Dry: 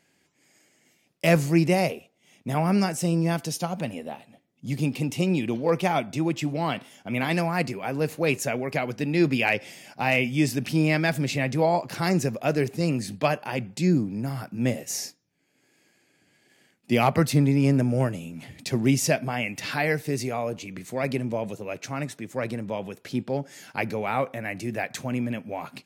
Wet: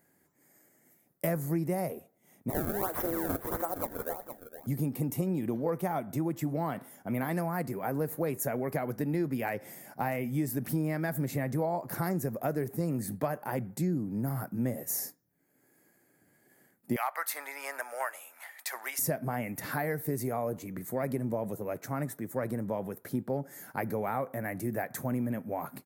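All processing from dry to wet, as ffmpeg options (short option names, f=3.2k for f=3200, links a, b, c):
-filter_complex "[0:a]asettb=1/sr,asplit=3[a][b][c];[a]atrim=end=2.504[d];[b]atrim=start=2.5:end=4.67,asetpts=PTS-STARTPTS,afade=t=in:d=0.004:c=qsin,afade=t=out:st=2.166:d=0.004:c=qsin,highpass=f=340:w=0.5412,highpass=f=340:w=1.3066,acrusher=samples=26:mix=1:aa=0.000001:lfo=1:lforange=41.6:lforate=1.5,aecho=1:1:465:0.282,atrim=end_sample=95697[e];[c]atrim=start=4.666[f];[d][e]acrossfade=d=0.004:c1=hsin:c2=qsin[g];[g][f]acrossfade=d=0.004:c1=qsin:c2=hsin,asettb=1/sr,asplit=3[h][i][j];[h]atrim=end=16.964[k];[i]atrim=start=16.96:end=18.99,asetpts=PTS-STARTPTS,afade=t=in:d=0.004:c=qsin,afade=t=out:st=2.026:d=0.004:c=qsin,highpass=f=780:w=0.5412,highpass=f=780:w=1.3066,equalizer=f=2.3k:w=0.43:g=9.5[l];[j]atrim=start=18.986[m];[k][l]acrossfade=d=0.004:c1=hsin:c2=qsin[n];[n][m]acrossfade=d=0.004:c1=qsin:c2=hsin,firequalizer=gain_entry='entry(1900,0);entry(3100,-10);entry(5000,-11);entry(13000,13)':delay=0.05:min_phase=1,acompressor=threshold=-26dB:ratio=6,equalizer=f=2.6k:w=2.3:g=-11.5,volume=-1dB"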